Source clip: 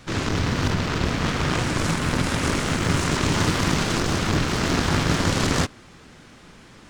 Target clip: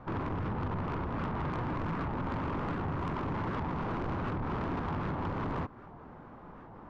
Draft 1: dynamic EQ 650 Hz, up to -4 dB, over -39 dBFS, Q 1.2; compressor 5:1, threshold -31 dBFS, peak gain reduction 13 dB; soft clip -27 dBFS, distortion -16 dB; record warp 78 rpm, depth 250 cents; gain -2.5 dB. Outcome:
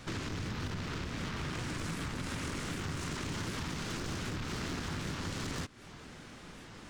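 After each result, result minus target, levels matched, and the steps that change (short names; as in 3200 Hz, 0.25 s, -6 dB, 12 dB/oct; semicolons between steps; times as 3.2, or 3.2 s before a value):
compressor: peak gain reduction +6 dB; 1000 Hz band -5.5 dB
change: compressor 5:1, threshold -23 dBFS, peak gain reduction 7 dB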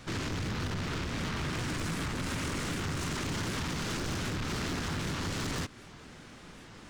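1000 Hz band -5.5 dB
add after dynamic EQ: synth low-pass 970 Hz, resonance Q 2.3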